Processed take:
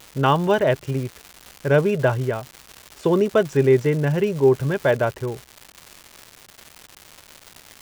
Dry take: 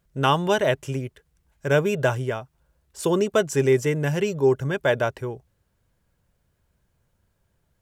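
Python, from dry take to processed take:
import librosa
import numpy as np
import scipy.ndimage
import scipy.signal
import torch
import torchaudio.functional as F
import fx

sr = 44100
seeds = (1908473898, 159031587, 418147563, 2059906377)

y = fx.spacing_loss(x, sr, db_at_10k=23)
y = fx.dmg_crackle(y, sr, seeds[0], per_s=360.0, level_db=-33.0)
y = y * librosa.db_to_amplitude(4.0)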